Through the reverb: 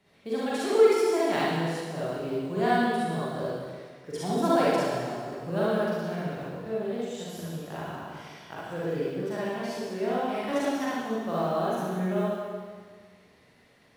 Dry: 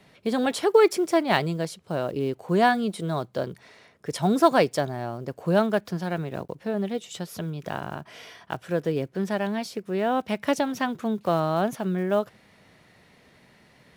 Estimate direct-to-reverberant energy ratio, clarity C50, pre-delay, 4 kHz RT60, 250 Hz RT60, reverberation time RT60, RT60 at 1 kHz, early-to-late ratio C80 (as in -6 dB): -9.0 dB, -5.0 dB, 38 ms, 1.7 s, 1.7 s, 1.7 s, 1.7 s, -0.5 dB